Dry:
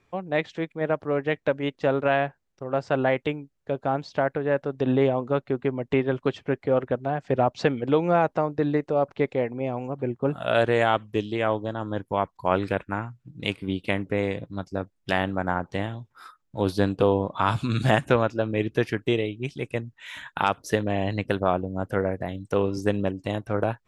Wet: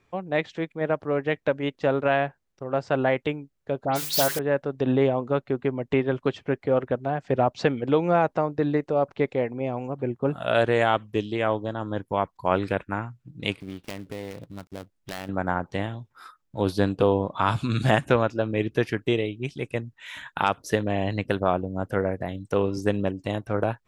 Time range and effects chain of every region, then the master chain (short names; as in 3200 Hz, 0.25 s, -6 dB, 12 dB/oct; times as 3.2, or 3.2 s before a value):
3.85–4.39 switching spikes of -16.5 dBFS + notches 50/100/150/200/250/300/350/400/450 Hz + dispersion highs, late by 0.115 s, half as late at 2900 Hz
13.6–15.29 switching dead time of 0.18 ms + compressor 2:1, threshold -38 dBFS
whole clip: dry